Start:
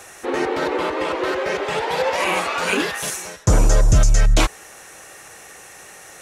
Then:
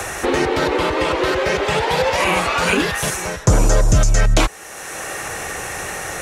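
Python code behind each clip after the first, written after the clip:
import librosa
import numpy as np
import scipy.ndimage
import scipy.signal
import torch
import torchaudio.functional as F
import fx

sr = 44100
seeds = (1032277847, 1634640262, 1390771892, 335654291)

y = fx.band_squash(x, sr, depth_pct=70)
y = y * librosa.db_to_amplitude(3.0)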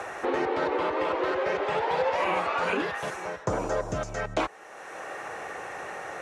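y = fx.bandpass_q(x, sr, hz=760.0, q=0.65)
y = y * librosa.db_to_amplitude(-6.5)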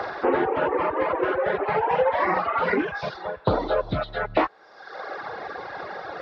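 y = fx.freq_compress(x, sr, knee_hz=1300.0, ratio=1.5)
y = fx.dereverb_blind(y, sr, rt60_s=1.9)
y = fx.doppler_dist(y, sr, depth_ms=0.18)
y = y * librosa.db_to_amplitude(7.0)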